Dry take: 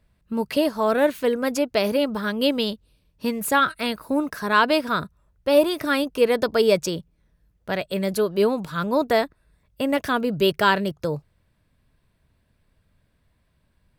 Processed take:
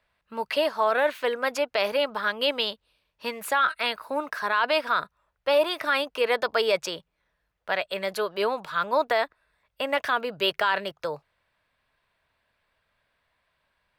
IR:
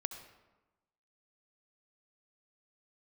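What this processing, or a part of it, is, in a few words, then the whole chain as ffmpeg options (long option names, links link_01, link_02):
DJ mixer with the lows and highs turned down: -filter_complex "[0:a]acrossover=split=580 4200:gain=0.0891 1 0.251[link_01][link_02][link_03];[link_01][link_02][link_03]amix=inputs=3:normalize=0,alimiter=limit=-16.5dB:level=0:latency=1:release=17,volume=3.5dB"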